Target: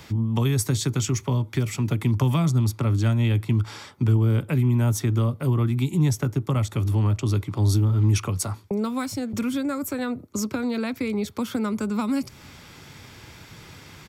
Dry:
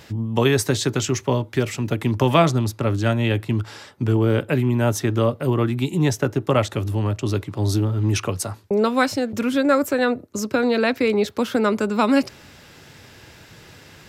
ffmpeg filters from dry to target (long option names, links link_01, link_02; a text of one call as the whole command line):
ffmpeg -i in.wav -filter_complex "[0:a]aecho=1:1:0.9:0.33,acrossover=split=210|6500[link_01][link_02][link_03];[link_02]acompressor=threshold=-29dB:ratio=6[link_04];[link_01][link_04][link_03]amix=inputs=3:normalize=0" out.wav